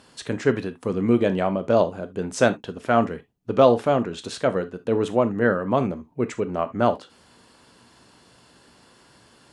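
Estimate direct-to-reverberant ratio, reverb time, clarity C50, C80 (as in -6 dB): 11.0 dB, not exponential, 17.5 dB, 31.0 dB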